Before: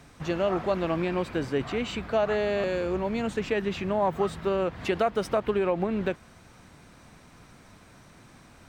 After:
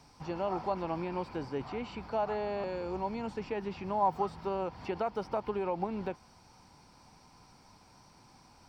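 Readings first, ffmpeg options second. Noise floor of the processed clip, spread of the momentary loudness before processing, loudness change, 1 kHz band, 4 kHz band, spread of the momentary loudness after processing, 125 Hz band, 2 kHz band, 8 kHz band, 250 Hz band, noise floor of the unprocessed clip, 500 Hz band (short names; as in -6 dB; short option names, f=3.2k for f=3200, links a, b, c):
-60 dBFS, 4 LU, -7.5 dB, -2.0 dB, -12.0 dB, 8 LU, -8.5 dB, -12.0 dB, under -10 dB, -8.5 dB, -54 dBFS, -8.5 dB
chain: -filter_complex "[0:a]superequalizer=9b=2.82:11b=0.631:14b=3.16,acrossover=split=2700[a][b];[b]acompressor=threshold=-49dB:ratio=4:attack=1:release=60[c];[a][c]amix=inputs=2:normalize=0,volume=-8.5dB"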